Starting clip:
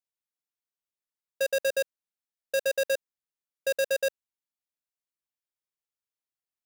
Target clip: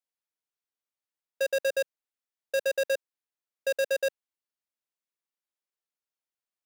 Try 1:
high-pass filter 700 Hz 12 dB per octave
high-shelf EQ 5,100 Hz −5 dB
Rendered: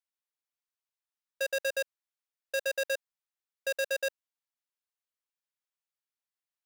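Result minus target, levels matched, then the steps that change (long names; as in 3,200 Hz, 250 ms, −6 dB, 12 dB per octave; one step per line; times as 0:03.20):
250 Hz band −9.5 dB
change: high-pass filter 250 Hz 12 dB per octave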